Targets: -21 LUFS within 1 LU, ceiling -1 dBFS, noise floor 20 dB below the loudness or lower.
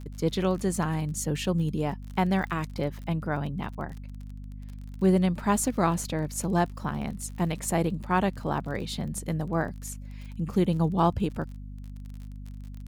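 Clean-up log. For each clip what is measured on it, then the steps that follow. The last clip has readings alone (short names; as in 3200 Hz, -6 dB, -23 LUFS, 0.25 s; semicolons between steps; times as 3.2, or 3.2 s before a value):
ticks 36/s; hum 50 Hz; harmonics up to 250 Hz; hum level -38 dBFS; loudness -28.5 LUFS; peak -9.0 dBFS; loudness target -21.0 LUFS
-> de-click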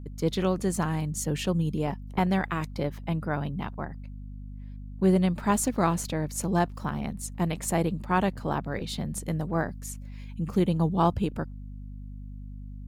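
ticks 0.078/s; hum 50 Hz; harmonics up to 250 Hz; hum level -38 dBFS
-> de-hum 50 Hz, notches 5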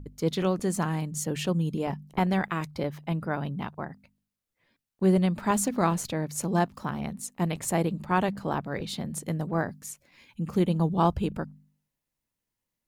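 hum none; loudness -28.5 LUFS; peak -10.0 dBFS; loudness target -21.0 LUFS
-> gain +7.5 dB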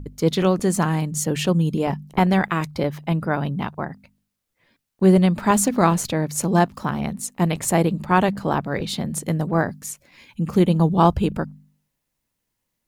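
loudness -21.0 LUFS; peak -2.5 dBFS; noise floor -79 dBFS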